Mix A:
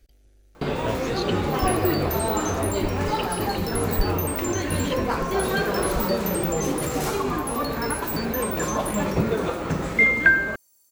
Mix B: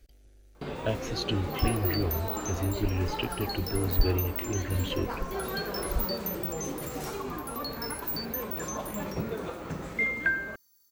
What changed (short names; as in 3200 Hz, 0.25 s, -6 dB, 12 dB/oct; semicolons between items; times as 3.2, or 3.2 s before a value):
first sound -10.5 dB; second sound: add fixed phaser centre 2600 Hz, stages 6